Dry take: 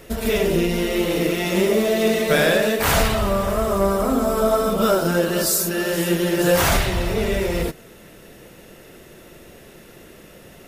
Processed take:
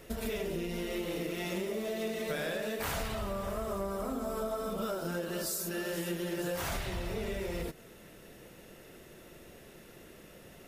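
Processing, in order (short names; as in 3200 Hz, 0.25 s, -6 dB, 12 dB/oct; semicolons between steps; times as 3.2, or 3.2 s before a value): compressor, threshold -24 dBFS, peak gain reduction 11 dB; gain -8.5 dB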